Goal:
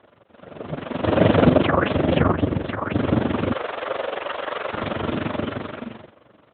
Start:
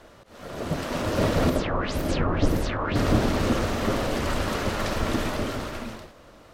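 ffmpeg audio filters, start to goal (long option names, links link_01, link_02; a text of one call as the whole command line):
ffmpeg -i in.wav -filter_complex "[0:a]tremolo=f=23:d=0.788,dynaudnorm=framelen=210:gausssize=9:maxgain=6dB,asplit=3[link_01][link_02][link_03];[link_01]afade=type=out:start_time=3.51:duration=0.02[link_04];[link_02]highpass=frequency=440:width=0.5412,highpass=frequency=440:width=1.3066,afade=type=in:start_time=3.51:duration=0.02,afade=type=out:start_time=4.72:duration=0.02[link_05];[link_03]afade=type=in:start_time=4.72:duration=0.02[link_06];[link_04][link_05][link_06]amix=inputs=3:normalize=0,asplit=2[link_07][link_08];[link_08]aeval=exprs='0.251*(abs(mod(val(0)/0.251+3,4)-2)-1)':channel_layout=same,volume=-11.5dB[link_09];[link_07][link_09]amix=inputs=2:normalize=0,asplit=3[link_10][link_11][link_12];[link_10]afade=type=out:start_time=1.03:duration=0.02[link_13];[link_11]acontrast=77,afade=type=in:start_time=1.03:duration=0.02,afade=type=out:start_time=2.32:duration=0.02[link_14];[link_12]afade=type=in:start_time=2.32:duration=0.02[link_15];[link_13][link_14][link_15]amix=inputs=3:normalize=0,asplit=2[link_16][link_17];[link_17]adelay=150,highpass=300,lowpass=3400,asoftclip=type=hard:threshold=-12dB,volume=-27dB[link_18];[link_16][link_18]amix=inputs=2:normalize=0,volume=-1dB" -ar 8000 -c:a libopencore_amrnb -b:a 12200 out.amr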